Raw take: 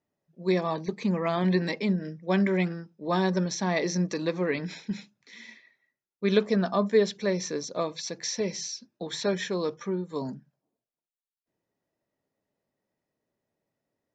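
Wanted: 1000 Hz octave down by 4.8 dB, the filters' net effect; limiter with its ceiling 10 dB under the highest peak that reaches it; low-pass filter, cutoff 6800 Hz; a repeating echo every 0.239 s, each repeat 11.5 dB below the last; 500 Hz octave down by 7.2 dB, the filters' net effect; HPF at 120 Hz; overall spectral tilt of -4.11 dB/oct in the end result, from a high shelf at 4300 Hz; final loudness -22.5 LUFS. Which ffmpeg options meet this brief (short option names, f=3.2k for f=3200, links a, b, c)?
-af "highpass=120,lowpass=6.8k,equalizer=f=500:t=o:g=-9,equalizer=f=1k:t=o:g=-3.5,highshelf=f=4.3k:g=7.5,alimiter=limit=-22.5dB:level=0:latency=1,aecho=1:1:239|478|717:0.266|0.0718|0.0194,volume=10.5dB"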